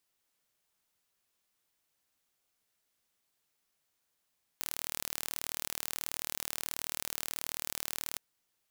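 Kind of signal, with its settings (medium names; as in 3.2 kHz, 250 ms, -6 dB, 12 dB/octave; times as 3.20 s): pulse train 38.5 per s, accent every 0, -8.5 dBFS 3.56 s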